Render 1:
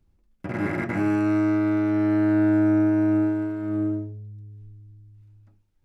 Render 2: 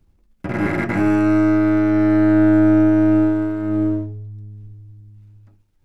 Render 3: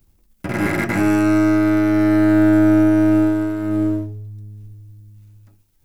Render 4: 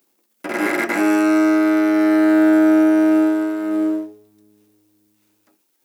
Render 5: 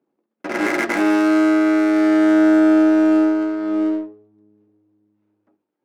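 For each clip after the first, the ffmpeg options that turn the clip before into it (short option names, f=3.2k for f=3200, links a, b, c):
-af "aeval=exprs='if(lt(val(0),0),0.708*val(0),val(0))':c=same,volume=7.5dB"
-af "aemphasis=mode=production:type=75kf"
-af "highpass=f=290:w=0.5412,highpass=f=290:w=1.3066,volume=2dB"
-af "adynamicsmooth=sensitivity=4:basefreq=1k"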